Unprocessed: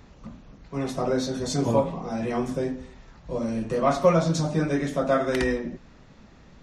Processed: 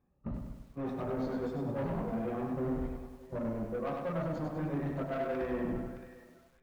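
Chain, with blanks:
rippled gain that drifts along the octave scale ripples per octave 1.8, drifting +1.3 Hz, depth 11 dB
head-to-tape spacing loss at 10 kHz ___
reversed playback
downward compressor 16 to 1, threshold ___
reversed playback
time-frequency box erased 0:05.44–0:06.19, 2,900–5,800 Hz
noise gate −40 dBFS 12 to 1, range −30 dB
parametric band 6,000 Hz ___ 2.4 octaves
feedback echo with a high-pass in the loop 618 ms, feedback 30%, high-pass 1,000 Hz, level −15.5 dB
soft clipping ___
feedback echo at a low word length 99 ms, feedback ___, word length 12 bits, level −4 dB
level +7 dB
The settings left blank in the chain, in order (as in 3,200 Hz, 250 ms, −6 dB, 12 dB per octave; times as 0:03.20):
30 dB, −35 dBFS, −10 dB, −38.5 dBFS, 55%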